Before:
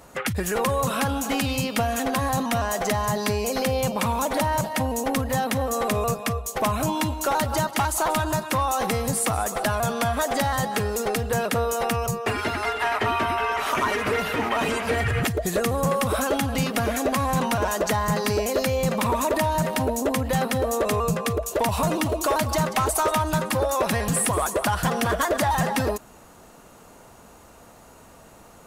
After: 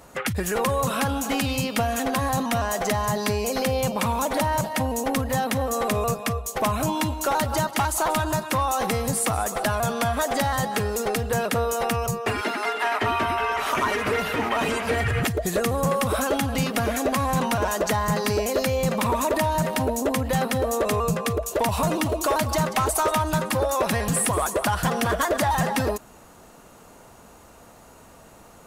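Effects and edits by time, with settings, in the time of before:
0:12.41–0:13.02: Butterworth high-pass 190 Hz

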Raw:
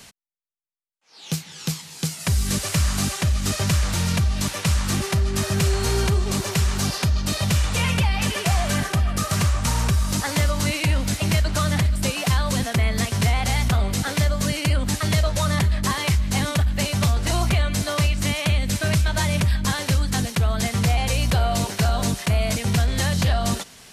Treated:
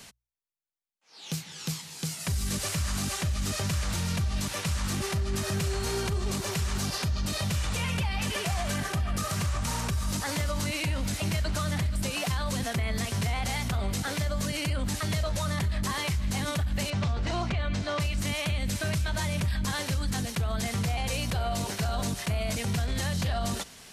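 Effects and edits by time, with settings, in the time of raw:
0:16.90–0:18.00: high-frequency loss of the air 130 metres
whole clip: mains-hum notches 60/120 Hz; brickwall limiter −18.5 dBFS; level −3 dB

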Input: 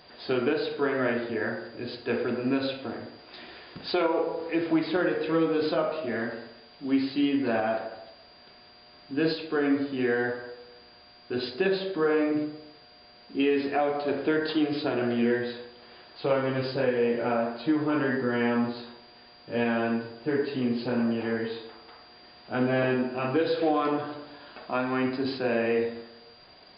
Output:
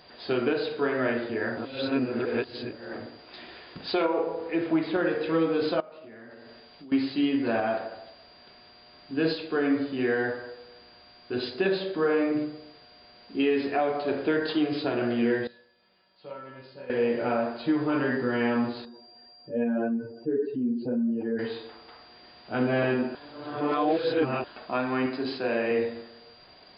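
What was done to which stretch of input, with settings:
0:01.57–0:02.93: reverse
0:04.05–0:05.05: high-frequency loss of the air 130 metres
0:05.80–0:06.92: downward compressor 10 to 1, threshold −43 dBFS
0:15.47–0:16.90: tuned comb filter 190 Hz, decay 0.64 s, harmonics odd, mix 90%
0:18.85–0:21.39: expanding power law on the bin magnitudes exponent 2
0:23.15–0:24.44: reverse
0:25.06–0:25.71: low-shelf EQ 130 Hz −11 dB

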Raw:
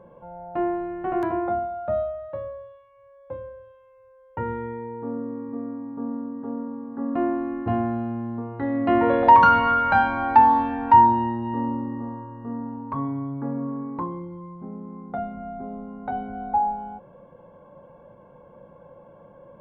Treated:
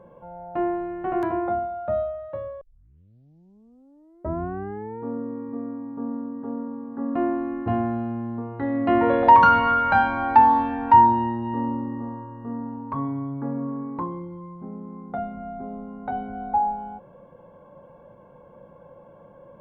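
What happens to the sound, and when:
0:02.61: tape start 2.41 s

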